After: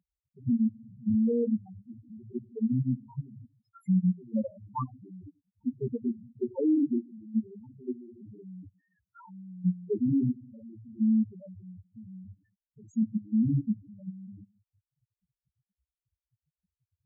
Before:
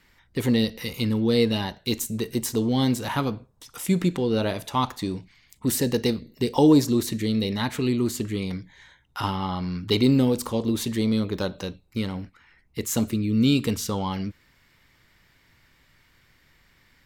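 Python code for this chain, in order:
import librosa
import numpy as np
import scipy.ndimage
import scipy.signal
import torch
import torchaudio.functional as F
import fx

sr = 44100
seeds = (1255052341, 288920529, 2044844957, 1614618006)

y = fx.low_shelf(x, sr, hz=170.0, db=-6.0, at=(6.9, 9.39))
y = fx.room_shoebox(y, sr, seeds[0], volume_m3=410.0, walls='furnished', distance_m=1.1)
y = fx.level_steps(y, sr, step_db=21)
y = fx.peak_eq(y, sr, hz=12000.0, db=-11.0, octaves=1.3)
y = fx.spec_topn(y, sr, count=2)
y = scipy.signal.sosfilt(scipy.signal.butter(4, 72.0, 'highpass', fs=sr, output='sos'), y)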